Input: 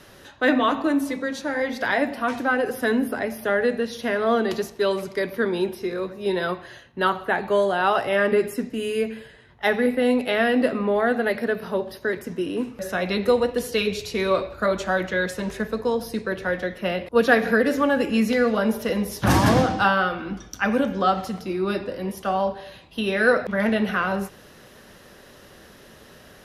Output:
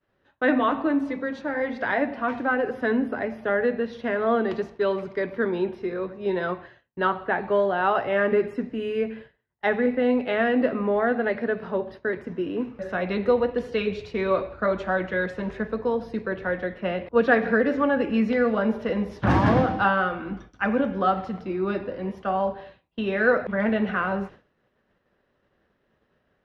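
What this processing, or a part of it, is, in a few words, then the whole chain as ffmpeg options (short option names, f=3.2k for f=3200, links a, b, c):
hearing-loss simulation: -af "lowpass=2.3k,agate=range=-33dB:threshold=-36dB:ratio=3:detection=peak,volume=-1.5dB"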